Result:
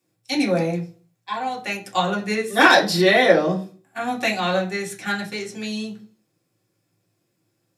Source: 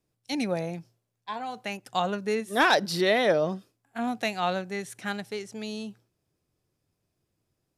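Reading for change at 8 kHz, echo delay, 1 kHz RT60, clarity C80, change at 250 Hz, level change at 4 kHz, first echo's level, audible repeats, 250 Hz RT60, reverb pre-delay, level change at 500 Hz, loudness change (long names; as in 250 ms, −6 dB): +7.5 dB, no echo audible, 0.35 s, 18.0 dB, +7.5 dB, +7.5 dB, no echo audible, no echo audible, 0.50 s, 3 ms, +6.5 dB, +7.5 dB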